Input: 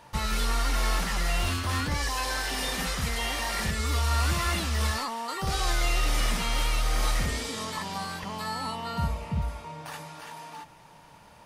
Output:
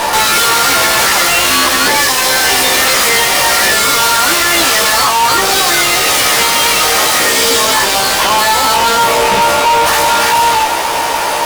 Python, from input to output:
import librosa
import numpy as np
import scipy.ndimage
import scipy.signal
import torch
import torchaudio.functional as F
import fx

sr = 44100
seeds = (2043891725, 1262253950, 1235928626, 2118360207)

y = scipy.signal.sosfilt(scipy.signal.butter(4, 340.0, 'highpass', fs=sr, output='sos'), x)
y = fx.fuzz(y, sr, gain_db=57.0, gate_db=-60.0)
y = fx.doubler(y, sr, ms=15.0, db=-3)
y = y * librosa.db_to_amplitude(1.5)